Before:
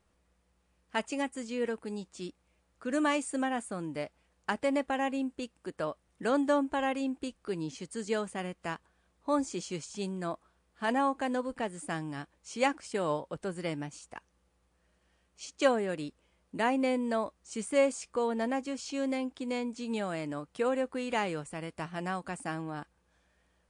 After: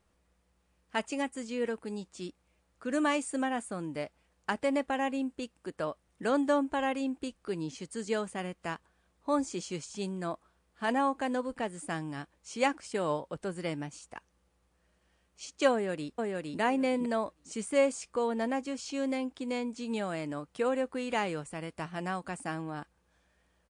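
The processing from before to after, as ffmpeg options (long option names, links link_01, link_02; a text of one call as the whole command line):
ffmpeg -i in.wav -filter_complex "[0:a]asplit=2[link_01][link_02];[link_02]afade=type=in:start_time=15.72:duration=0.01,afade=type=out:start_time=16.59:duration=0.01,aecho=0:1:460|920|1380:0.794328|0.119149|0.0178724[link_03];[link_01][link_03]amix=inputs=2:normalize=0" out.wav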